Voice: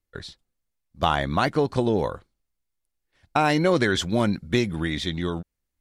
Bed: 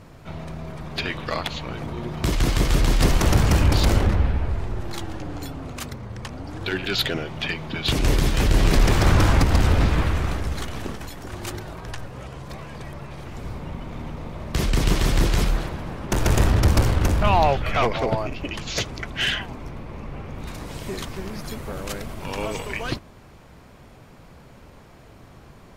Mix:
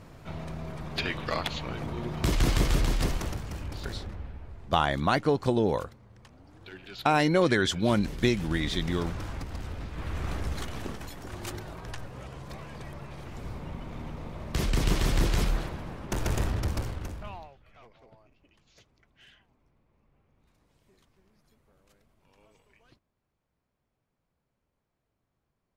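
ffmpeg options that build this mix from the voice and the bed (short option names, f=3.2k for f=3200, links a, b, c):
-filter_complex "[0:a]adelay=3700,volume=-2.5dB[a];[1:a]volume=10.5dB,afade=t=out:st=2.53:d=0.87:silence=0.158489,afade=t=in:st=9.93:d=0.5:silence=0.199526,afade=t=out:st=15.58:d=1.92:silence=0.0375837[b];[a][b]amix=inputs=2:normalize=0"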